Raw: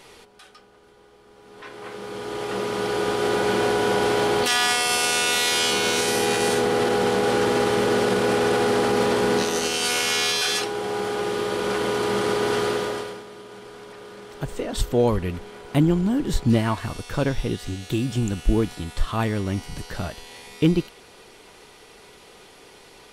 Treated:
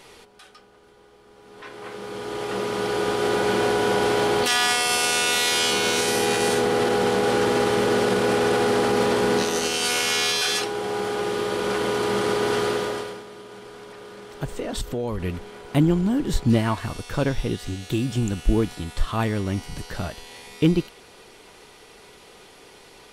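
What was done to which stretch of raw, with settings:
14.56–15.20 s: compression, threshold -23 dBFS

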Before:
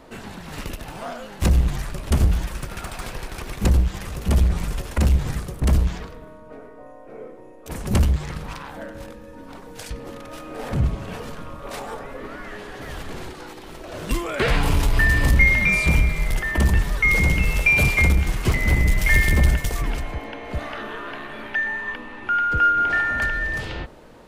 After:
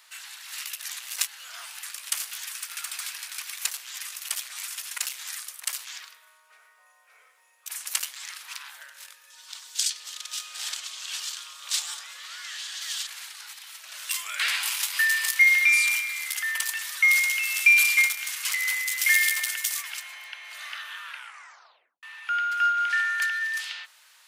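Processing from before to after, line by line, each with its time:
0.84–1.83 s: reverse
9.30–13.07 s: high-order bell 5 kHz +10 dB
21.04 s: tape stop 0.99 s
whole clip: Bessel high-pass 2 kHz, order 4; treble shelf 3.7 kHz +9 dB

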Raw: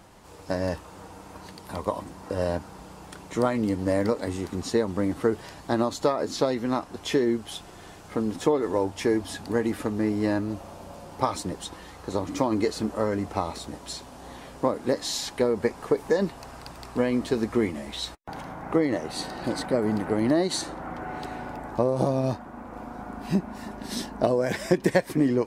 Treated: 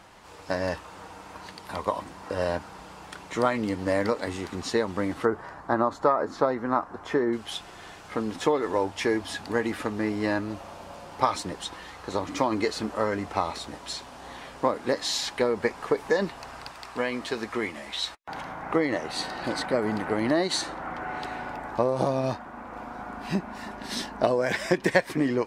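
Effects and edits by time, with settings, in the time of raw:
5.25–7.33 s: resonant high shelf 2 kHz -12.5 dB, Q 1.5
16.68–18.30 s: bass shelf 420 Hz -7.5 dB
whole clip: low-pass 2 kHz 6 dB/octave; tilt shelf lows -7.5 dB, about 880 Hz; trim +3 dB

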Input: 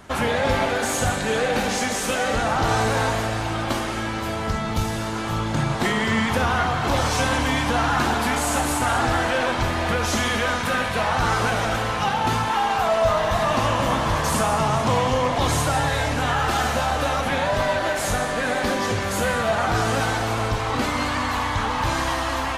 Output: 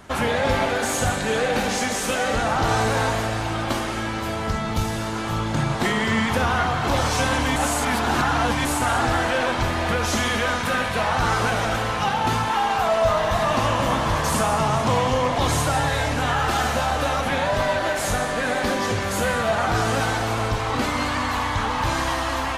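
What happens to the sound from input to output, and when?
7.56–8.65 s: reverse

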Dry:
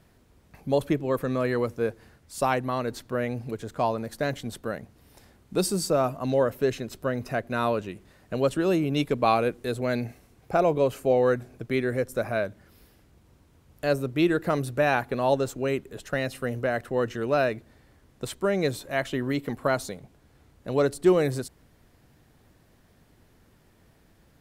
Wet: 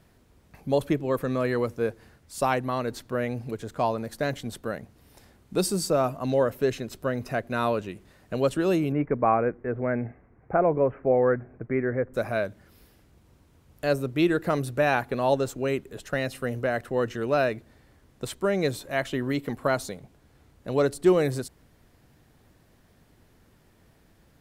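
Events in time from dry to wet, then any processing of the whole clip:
8.92–12.14 s: steep low-pass 2.1 kHz 48 dB/octave

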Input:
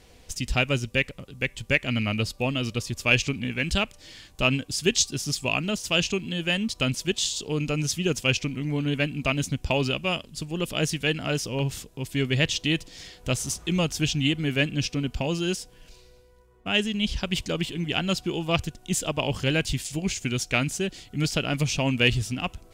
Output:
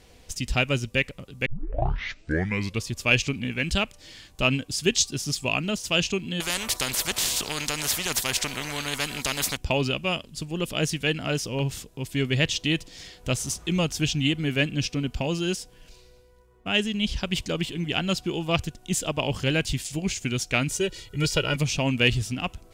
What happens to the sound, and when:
1.46 s: tape start 1.39 s
6.40–9.57 s: spectrum-flattening compressor 4:1
20.69–21.56 s: comb 2.1 ms, depth 89%

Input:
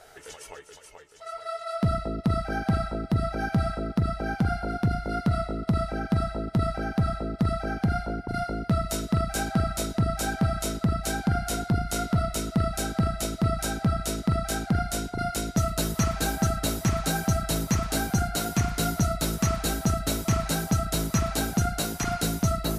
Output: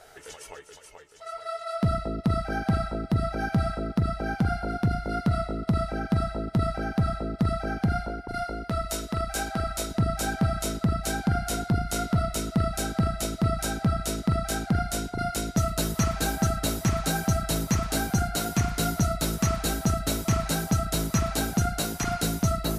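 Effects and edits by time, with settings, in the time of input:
8.08–9.91 s: peaking EQ 150 Hz -8.5 dB 1.8 oct

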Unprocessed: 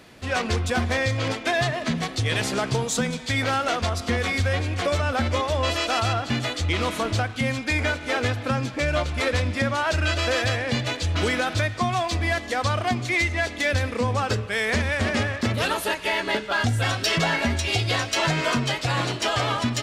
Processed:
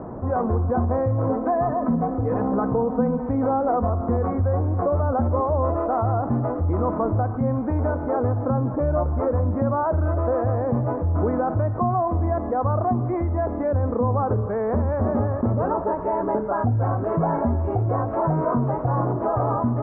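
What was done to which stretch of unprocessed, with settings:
1.29–3.90 s: comb 4 ms
whole clip: steep low-pass 1.1 kHz 36 dB/octave; level flattener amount 50%

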